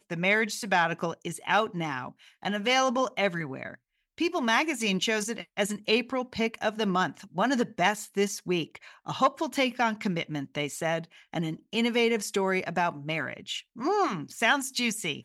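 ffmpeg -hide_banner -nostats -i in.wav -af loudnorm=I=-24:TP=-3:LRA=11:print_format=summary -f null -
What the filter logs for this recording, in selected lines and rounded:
Input Integrated:    -28.2 LUFS
Input True Peak:     -10.5 dBTP
Input LRA:             1.3 LU
Input Threshold:     -38.4 LUFS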